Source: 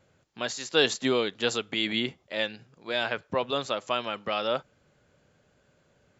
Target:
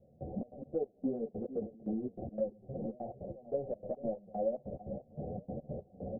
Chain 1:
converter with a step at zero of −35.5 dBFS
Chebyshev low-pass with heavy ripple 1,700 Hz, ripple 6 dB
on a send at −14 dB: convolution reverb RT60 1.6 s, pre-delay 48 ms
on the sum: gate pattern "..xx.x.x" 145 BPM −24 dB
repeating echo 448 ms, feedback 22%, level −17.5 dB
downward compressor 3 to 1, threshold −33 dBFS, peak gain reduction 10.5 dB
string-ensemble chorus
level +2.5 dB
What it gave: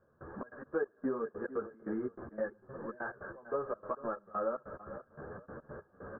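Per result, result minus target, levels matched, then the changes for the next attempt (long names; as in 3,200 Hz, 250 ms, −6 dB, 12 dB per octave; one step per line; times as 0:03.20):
1,000 Hz band +5.5 dB; converter with a step at zero: distortion −6 dB
change: Chebyshev low-pass with heavy ripple 760 Hz, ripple 6 dB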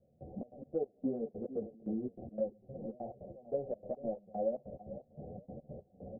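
converter with a step at zero: distortion −6 dB
change: converter with a step at zero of −28.5 dBFS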